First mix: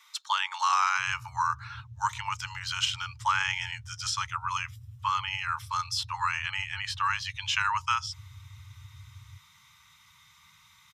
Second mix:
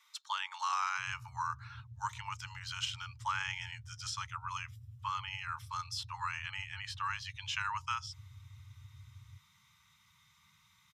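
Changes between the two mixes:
speech -9.0 dB; master: add low shelf 120 Hz -8.5 dB

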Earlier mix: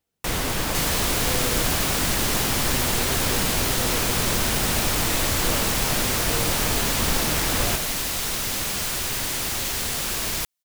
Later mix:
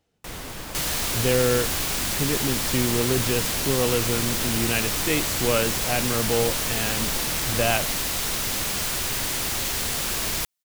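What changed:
speech +11.5 dB; first sound -10.5 dB

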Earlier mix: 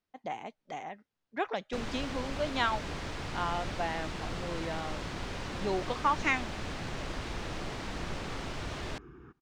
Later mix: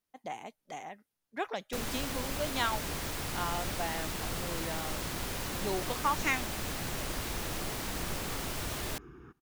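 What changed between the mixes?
speech -3.0 dB; master: remove air absorption 120 m

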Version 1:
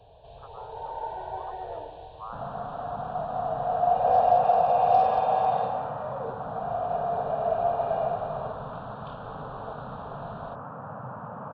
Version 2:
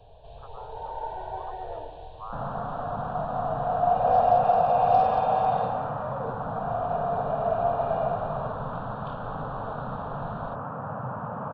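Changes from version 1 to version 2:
second sound +4.5 dB; master: remove HPF 75 Hz 6 dB/oct

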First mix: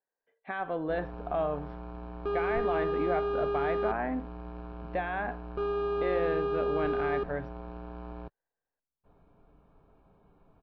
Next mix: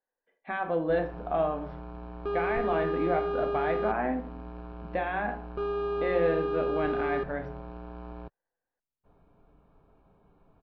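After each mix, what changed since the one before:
reverb: on, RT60 0.45 s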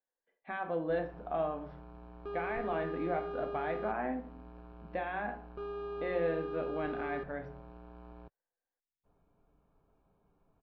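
speech -6.0 dB; background -9.5 dB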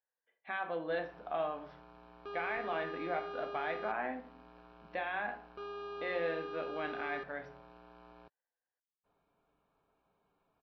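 master: add tilt +3.5 dB/oct

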